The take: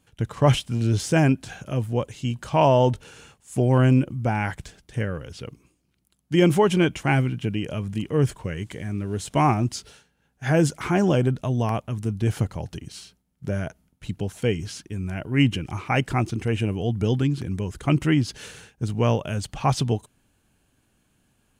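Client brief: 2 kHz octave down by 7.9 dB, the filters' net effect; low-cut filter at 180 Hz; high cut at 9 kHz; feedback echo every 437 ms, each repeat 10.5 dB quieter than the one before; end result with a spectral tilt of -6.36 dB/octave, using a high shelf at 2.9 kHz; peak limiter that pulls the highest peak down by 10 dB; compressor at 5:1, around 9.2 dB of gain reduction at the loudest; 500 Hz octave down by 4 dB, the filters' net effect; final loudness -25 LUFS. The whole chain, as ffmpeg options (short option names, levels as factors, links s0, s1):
-af "highpass=180,lowpass=9000,equalizer=f=500:t=o:g=-4.5,equalizer=f=2000:t=o:g=-8,highshelf=f=2900:g=-6,acompressor=threshold=0.0447:ratio=5,alimiter=level_in=1.06:limit=0.0631:level=0:latency=1,volume=0.944,aecho=1:1:437|874|1311:0.299|0.0896|0.0269,volume=3.76"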